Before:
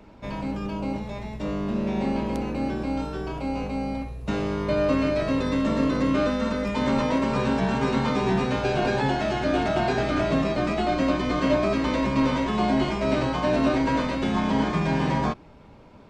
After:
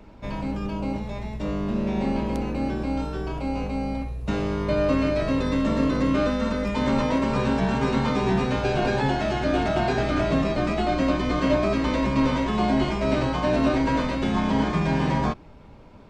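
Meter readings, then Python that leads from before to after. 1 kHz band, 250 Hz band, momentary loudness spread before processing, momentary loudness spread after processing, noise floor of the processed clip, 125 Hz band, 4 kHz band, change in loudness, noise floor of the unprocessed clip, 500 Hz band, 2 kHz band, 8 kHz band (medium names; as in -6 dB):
0.0 dB, +0.5 dB, 8 LU, 7 LU, -45 dBFS, +2.0 dB, 0.0 dB, +0.5 dB, -48 dBFS, 0.0 dB, 0.0 dB, 0.0 dB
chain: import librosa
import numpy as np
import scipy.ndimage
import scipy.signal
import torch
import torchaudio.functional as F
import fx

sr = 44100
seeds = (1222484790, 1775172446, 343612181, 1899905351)

y = fx.low_shelf(x, sr, hz=71.0, db=7.5)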